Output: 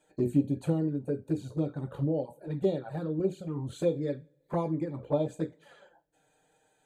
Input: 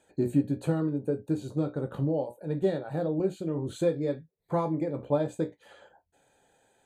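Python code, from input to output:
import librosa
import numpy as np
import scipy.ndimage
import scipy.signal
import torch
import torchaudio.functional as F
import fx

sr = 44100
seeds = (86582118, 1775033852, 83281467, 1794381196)

y = fx.env_flanger(x, sr, rest_ms=6.7, full_db=-22.5)
y = fx.rev_double_slope(y, sr, seeds[0], early_s=0.47, late_s=2.0, knee_db=-22, drr_db=19.0)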